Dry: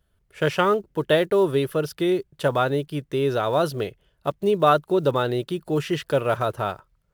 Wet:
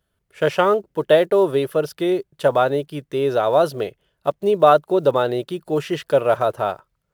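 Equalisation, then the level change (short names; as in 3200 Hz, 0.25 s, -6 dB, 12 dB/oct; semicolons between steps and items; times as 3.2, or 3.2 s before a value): low shelf 77 Hz -12 dB; dynamic EQ 630 Hz, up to +7 dB, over -34 dBFS, Q 1.2; 0.0 dB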